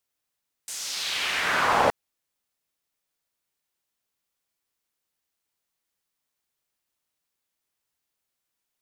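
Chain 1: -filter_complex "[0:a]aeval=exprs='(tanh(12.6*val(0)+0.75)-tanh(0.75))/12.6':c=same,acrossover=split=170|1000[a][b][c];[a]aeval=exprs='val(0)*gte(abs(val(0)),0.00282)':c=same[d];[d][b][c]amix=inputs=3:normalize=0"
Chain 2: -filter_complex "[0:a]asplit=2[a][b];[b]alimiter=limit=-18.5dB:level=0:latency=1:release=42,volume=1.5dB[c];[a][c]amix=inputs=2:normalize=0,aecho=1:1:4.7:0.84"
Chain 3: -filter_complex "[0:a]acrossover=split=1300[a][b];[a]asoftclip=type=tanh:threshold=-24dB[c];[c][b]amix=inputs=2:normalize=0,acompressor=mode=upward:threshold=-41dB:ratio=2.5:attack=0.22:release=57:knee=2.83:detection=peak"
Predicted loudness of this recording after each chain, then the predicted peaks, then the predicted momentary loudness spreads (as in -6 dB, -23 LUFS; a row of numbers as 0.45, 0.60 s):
-29.5, -17.0, -26.0 LUFS; -15.5, -4.0, -13.0 dBFS; 10, 16, 12 LU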